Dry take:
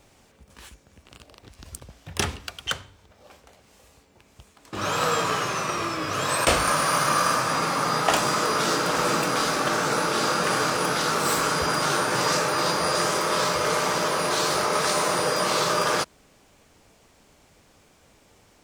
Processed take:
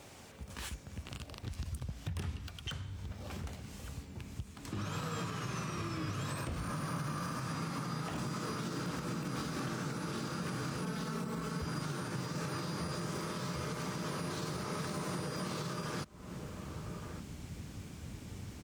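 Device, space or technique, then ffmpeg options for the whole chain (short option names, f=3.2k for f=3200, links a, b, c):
podcast mastering chain: -filter_complex "[0:a]asettb=1/sr,asplit=3[a][b][c];[a]atrim=end=10.834[d];[b]atrim=start=10.83:end=11.62,asetpts=PTS-STARTPTS,afade=t=in:d=0.004:c=qsin,afade=t=out:st=0.786:d=0.004:c=qsin,aecho=1:1:4.6:0.84,atrim=end_sample=34839[e];[c]atrim=start=11.616[f];[d][e]acrossfade=d=0.004:c1=hsin:c2=qsin[g];[g][f]acrossfade=d=0.004:c1=qsin:c2=hsin,asplit=2[h][i];[i]adelay=1166,volume=-28dB,highshelf=f=4k:g=-26.2[j];[h][j]amix=inputs=2:normalize=0,asubboost=boost=7.5:cutoff=210,highpass=73,deesser=0.6,acompressor=threshold=-38dB:ratio=3,alimiter=level_in=9dB:limit=-24dB:level=0:latency=1:release=305,volume=-9dB,volume=4.5dB" -ar 44100 -c:a libmp3lame -b:a 112k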